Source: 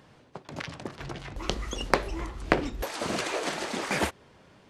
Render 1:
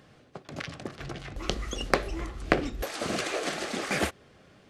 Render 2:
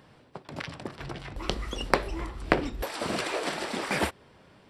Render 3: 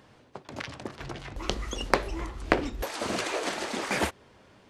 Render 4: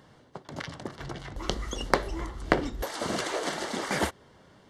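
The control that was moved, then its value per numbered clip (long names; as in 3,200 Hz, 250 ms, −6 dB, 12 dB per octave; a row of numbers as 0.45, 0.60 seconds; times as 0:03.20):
notch filter, centre frequency: 940, 6,500, 160, 2,500 Hertz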